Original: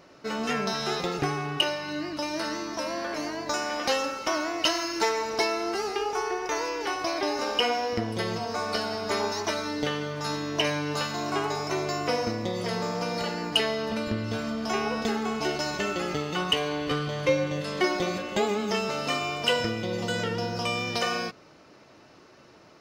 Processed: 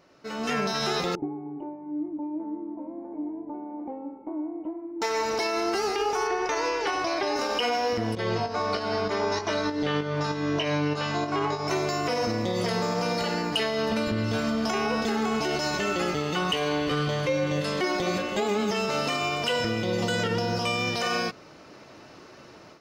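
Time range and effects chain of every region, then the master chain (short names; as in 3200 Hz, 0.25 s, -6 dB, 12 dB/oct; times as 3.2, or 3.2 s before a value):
1.15–5.02 vocal tract filter u + bell 88 Hz -7 dB 2.2 oct
6.27–7.36 air absorption 52 m + notches 60/120/180/240/300/360/420/480 Hz
8.15–11.68 pump 97 bpm, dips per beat 2, -11 dB, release 0.261 s + air absorption 110 m + doubler 20 ms -6.5 dB
whole clip: AGC gain up to 11.5 dB; limiter -11.5 dBFS; gain -6 dB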